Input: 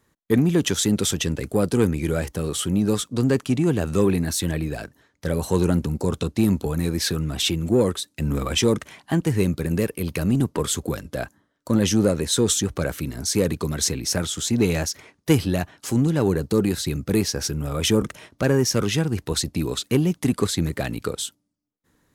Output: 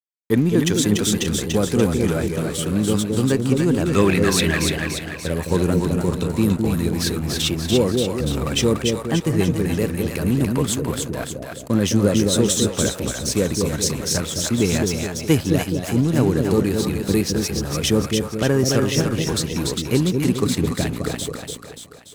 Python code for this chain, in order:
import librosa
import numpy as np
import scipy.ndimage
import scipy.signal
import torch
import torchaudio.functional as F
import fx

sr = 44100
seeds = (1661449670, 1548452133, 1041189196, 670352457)

y = fx.peak_eq(x, sr, hz=2200.0, db=12.5, octaves=2.2, at=(3.86, 4.71))
y = np.sign(y) * np.maximum(np.abs(y) - 10.0 ** (-37.0 / 20.0), 0.0)
y = fx.echo_split(y, sr, split_hz=610.0, low_ms=211, high_ms=290, feedback_pct=52, wet_db=-3.5)
y = y * 10.0 ** (1.5 / 20.0)